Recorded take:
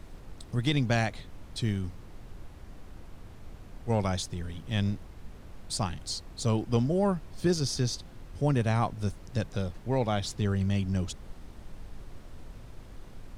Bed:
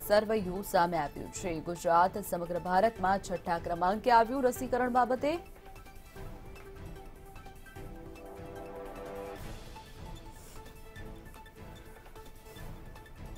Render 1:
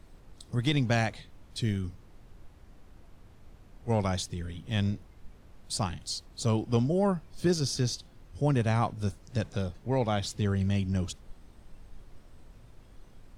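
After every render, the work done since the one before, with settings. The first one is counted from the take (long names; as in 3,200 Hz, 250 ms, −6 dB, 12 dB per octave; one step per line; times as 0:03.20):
noise reduction from a noise print 7 dB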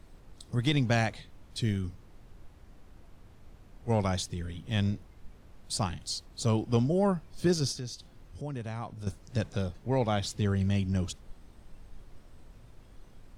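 0:07.72–0:09.07: downward compressor 2 to 1, threshold −42 dBFS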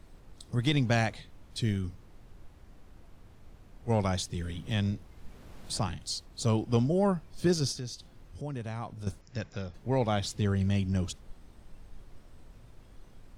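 0:04.34–0:05.88: multiband upward and downward compressor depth 40%
0:09.21–0:09.74: Chebyshev low-pass with heavy ripple 7,300 Hz, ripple 6 dB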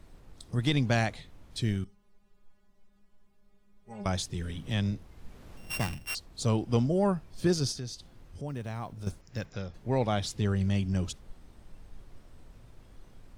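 0:01.84–0:04.06: stiff-string resonator 200 Hz, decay 0.28 s, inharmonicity 0.002
0:05.57–0:06.15: samples sorted by size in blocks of 16 samples
0:08.48–0:09.51: one scale factor per block 7 bits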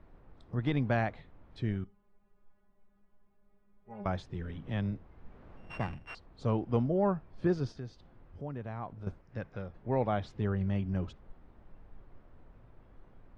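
low-pass filter 1,600 Hz 12 dB per octave
low-shelf EQ 340 Hz −4.5 dB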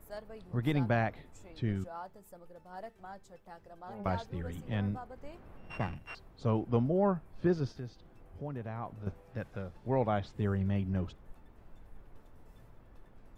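mix in bed −19 dB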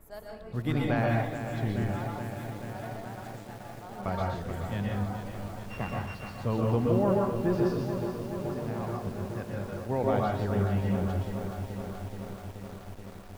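dense smooth reverb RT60 0.54 s, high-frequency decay 0.75×, pre-delay 110 ms, DRR −1.5 dB
feedback echo at a low word length 428 ms, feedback 80%, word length 8 bits, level −8.5 dB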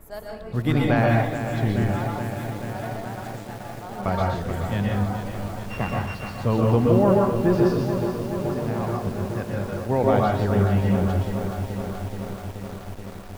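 level +7.5 dB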